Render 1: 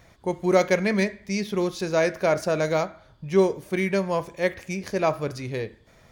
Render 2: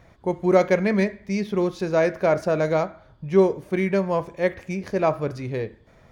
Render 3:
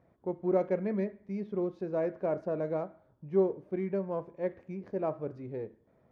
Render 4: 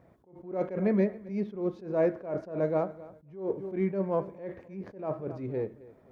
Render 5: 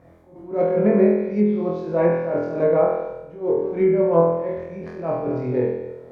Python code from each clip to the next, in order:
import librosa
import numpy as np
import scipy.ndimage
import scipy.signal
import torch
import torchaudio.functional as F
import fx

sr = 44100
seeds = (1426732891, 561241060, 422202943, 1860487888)

y1 = fx.high_shelf(x, sr, hz=2900.0, db=-11.5)
y1 = y1 * 10.0 ** (2.5 / 20.0)
y2 = np.where(y1 < 0.0, 10.0 ** (-3.0 / 20.0) * y1, y1)
y2 = fx.bandpass_q(y2, sr, hz=330.0, q=0.67)
y2 = y2 * 10.0 ** (-7.5 / 20.0)
y3 = fx.echo_feedback(y2, sr, ms=265, feedback_pct=30, wet_db=-20)
y3 = fx.attack_slew(y3, sr, db_per_s=120.0)
y3 = y3 * 10.0 ** (6.5 / 20.0)
y4 = fx.room_flutter(y3, sr, wall_m=4.1, rt60_s=0.9)
y4 = fx.env_lowpass_down(y4, sr, base_hz=1900.0, full_db=-18.5)
y4 = y4 * 10.0 ** (6.0 / 20.0)